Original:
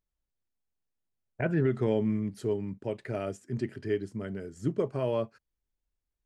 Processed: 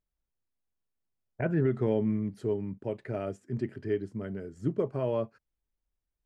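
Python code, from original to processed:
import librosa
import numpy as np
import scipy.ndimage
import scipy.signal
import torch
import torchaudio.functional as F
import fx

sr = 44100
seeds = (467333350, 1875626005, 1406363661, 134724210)

y = fx.high_shelf(x, sr, hz=2700.0, db=-10.0)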